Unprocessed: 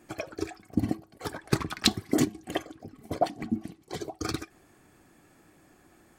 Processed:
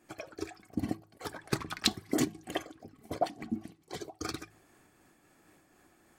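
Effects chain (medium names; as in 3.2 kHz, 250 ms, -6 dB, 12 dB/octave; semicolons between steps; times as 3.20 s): bass shelf 400 Hz -4 dB; de-hum 53.29 Hz, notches 3; random flutter of the level, depth 60%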